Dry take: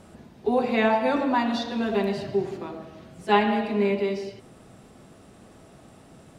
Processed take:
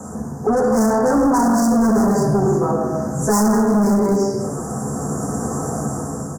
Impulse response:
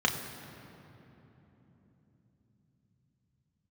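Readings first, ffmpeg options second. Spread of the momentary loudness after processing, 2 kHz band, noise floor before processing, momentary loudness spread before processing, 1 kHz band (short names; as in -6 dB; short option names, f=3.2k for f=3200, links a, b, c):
9 LU, -1.0 dB, -51 dBFS, 16 LU, +5.5 dB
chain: -filter_complex "[0:a]aresample=32000,aresample=44100,asplit=2[a][b];[b]adelay=14,volume=-7dB[c];[a][c]amix=inputs=2:normalize=0[d];[1:a]atrim=start_sample=2205,afade=t=out:st=0.27:d=0.01,atrim=end_sample=12348[e];[d][e]afir=irnorm=-1:irlink=0,acrossover=split=200|2600[f][g][h];[g]asoftclip=type=tanh:threshold=-17.5dB[i];[f][i][h]amix=inputs=3:normalize=0,dynaudnorm=f=410:g=5:m=12dB,asoftclip=type=hard:threshold=-11.5dB,asuperstop=centerf=3000:order=8:qfactor=0.66,bass=f=250:g=-2,treble=f=4k:g=11,acompressor=threshold=-25dB:ratio=2.5,volume=7.5dB"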